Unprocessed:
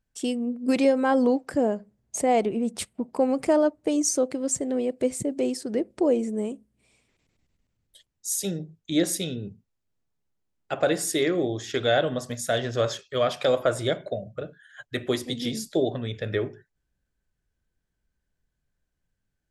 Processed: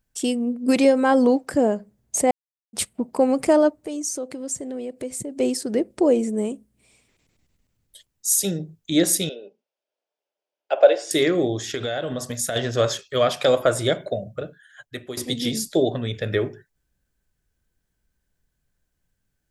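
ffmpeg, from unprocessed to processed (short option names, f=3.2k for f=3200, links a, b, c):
-filter_complex "[0:a]asettb=1/sr,asplit=3[a][b][c];[a]atrim=end=3.744[d];[b]atrim=start=3.74:end=5.4,asetpts=PTS-STARTPTS,afade=t=in:d=0.004:c=qsin,afade=t=out:st=1.656:d=0.004:c=qsin,acompressor=threshold=-39dB:ratio=2:attack=3.2:release=140:knee=1:detection=peak[e];[c]atrim=start=5.396[f];[d][e]acrossfade=d=0.004:c1=hsin:c2=qsin[g];[g][f]acrossfade=d=0.004:c1=qsin:c2=hsin,asettb=1/sr,asplit=3[h][i][j];[h]atrim=end=9.294[k];[i]atrim=start=9.29:end=11.11,asetpts=PTS-STARTPTS,afade=t=in:d=0.004:c=qsin,afade=t=out:st=1.816:d=0.004:c=qsin,highpass=f=430:w=0.5412,highpass=f=430:w=1.3066,equalizer=f=590:t=q:w=4:g=9,equalizer=f=1.2k:t=q:w=4:g=-7,equalizer=f=1.9k:t=q:w=4:g=-7,equalizer=f=4.1k:t=q:w=4:g=-7,lowpass=f=4.8k:w=0.5412,lowpass=f=4.8k:w=1.3066[l];[j]atrim=start=11.106[m];[k][l]acrossfade=d=0.004:c1=hsin:c2=qsin[n];[n][m]acrossfade=d=0.004:c1=qsin:c2=hsin,asettb=1/sr,asplit=3[o][p][q];[o]atrim=end=11.644[r];[p]atrim=start=11.64:end=12.56,asetpts=PTS-STARTPTS,afade=t=in:d=0.004:c=qsin,afade=t=out:st=0.916:d=0.004:c=qsin,acompressor=threshold=-27dB:ratio=6:attack=3.2:release=140:knee=1:detection=peak[s];[q]atrim=start=12.556[t];[r][s]acrossfade=d=0.004:c1=hsin:c2=qsin[u];[u][t]acrossfade=d=0.004:c1=qsin:c2=hsin,asplit=4[v][w][x][y];[v]atrim=end=2.31,asetpts=PTS-STARTPTS,afade=t=out:st=2.306:d=0.004:c=hsin[z];[w]atrim=start=2.31:end=2.73,asetpts=PTS-STARTPTS,volume=0[aa];[x]atrim=start=2.73:end=15.17,asetpts=PTS-STARTPTS,afade=t=in:d=0.004:c=hsin,afade=t=out:st=11.58:d=0.86:silence=0.177828[ab];[y]atrim=start=15.17,asetpts=PTS-STARTPTS,afade=t=in:d=0.004:c=hsin:silence=0.177828[ac];[z][aa][ab][ac]concat=n=4:v=0:a=1,highshelf=f=7.5k:g=7.5,volume=4dB"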